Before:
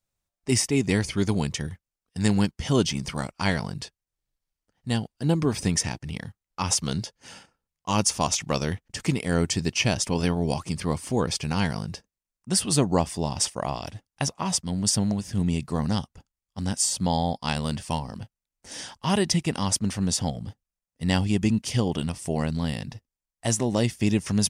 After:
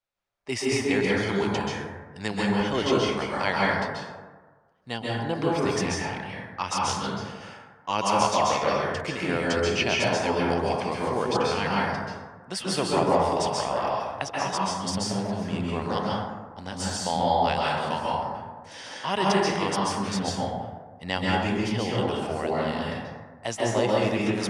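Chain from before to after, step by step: three-band isolator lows -14 dB, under 400 Hz, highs -16 dB, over 4300 Hz; plate-style reverb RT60 1.4 s, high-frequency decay 0.35×, pre-delay 0.12 s, DRR -5 dB

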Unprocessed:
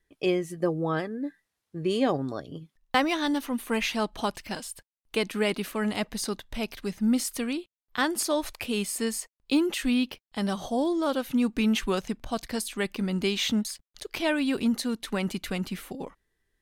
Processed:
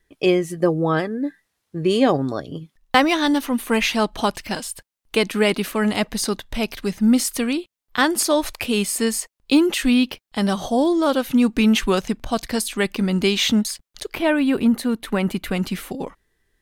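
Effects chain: 14.13–15.56 bell 5700 Hz -14 dB -> -8 dB 1.5 oct; gain +8 dB

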